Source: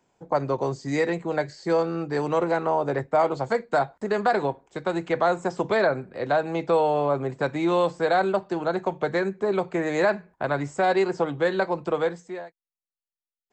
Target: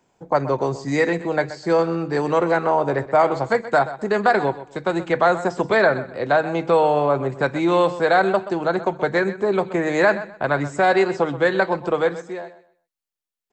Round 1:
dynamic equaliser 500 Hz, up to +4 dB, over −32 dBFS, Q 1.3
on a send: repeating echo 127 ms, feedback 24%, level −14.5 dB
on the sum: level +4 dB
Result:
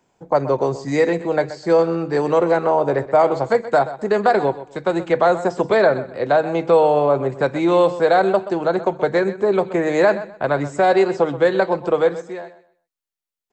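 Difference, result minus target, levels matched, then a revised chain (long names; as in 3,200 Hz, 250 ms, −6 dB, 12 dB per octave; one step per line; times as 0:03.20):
2,000 Hz band −5.0 dB
dynamic equaliser 1,700 Hz, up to +4 dB, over −32 dBFS, Q 1.3
on a send: repeating echo 127 ms, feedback 24%, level −14.5 dB
on the sum: level +4 dB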